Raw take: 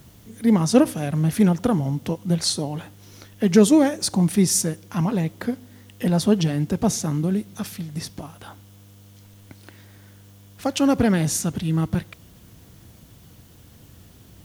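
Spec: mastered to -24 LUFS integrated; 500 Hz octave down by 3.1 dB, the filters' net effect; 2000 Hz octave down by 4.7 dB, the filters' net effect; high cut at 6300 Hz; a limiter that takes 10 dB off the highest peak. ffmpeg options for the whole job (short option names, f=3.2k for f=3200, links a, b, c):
-af "lowpass=6.3k,equalizer=f=500:t=o:g=-3.5,equalizer=f=2k:t=o:g=-6,volume=1.5dB,alimiter=limit=-13.5dB:level=0:latency=1"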